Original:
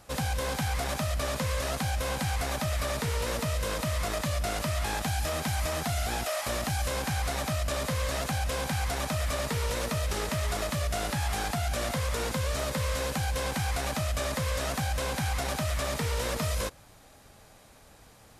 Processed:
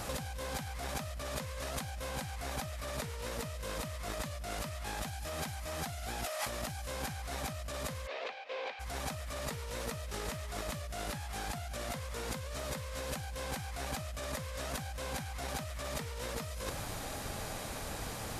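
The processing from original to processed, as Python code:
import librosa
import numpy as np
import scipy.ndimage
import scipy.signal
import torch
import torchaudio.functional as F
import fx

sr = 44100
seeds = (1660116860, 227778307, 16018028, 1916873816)

y = fx.over_compress(x, sr, threshold_db=-42.0, ratio=-1.0)
y = fx.cabinet(y, sr, low_hz=410.0, low_slope=24, high_hz=4000.0, hz=(460.0, 1400.0, 2400.0), db=(8, -4, 6), at=(8.06, 8.79), fade=0.02)
y = y * 10.0 ** (2.5 / 20.0)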